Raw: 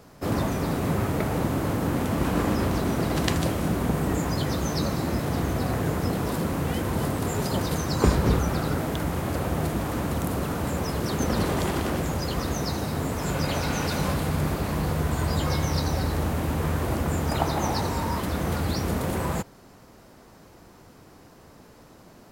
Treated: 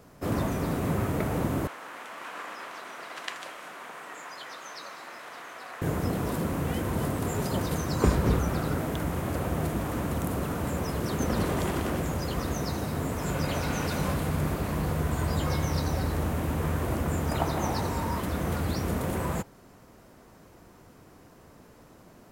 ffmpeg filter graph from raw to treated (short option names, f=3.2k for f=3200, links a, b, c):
-filter_complex "[0:a]asettb=1/sr,asplit=3[a][b][c];[a]atrim=end=1.674[d];[b]atrim=start=1.67:end=5.82,asetpts=PTS-STARTPTS,afade=t=in:d=0.004:c=qsin,afade=t=out:st=4.146:d=0.004:c=qsin,highpass=1.2k,aemphasis=mode=reproduction:type=50fm[e];[c]atrim=start=5.816[f];[d][e]acrossfade=d=0.004:c1=hsin:c2=qsin[g];[g][f]acrossfade=d=0.004:c1=qsin:c2=hsin,equalizer=f=4.5k:w=1.6:g=-4,bandreject=f=830:w=24,volume=-2.5dB"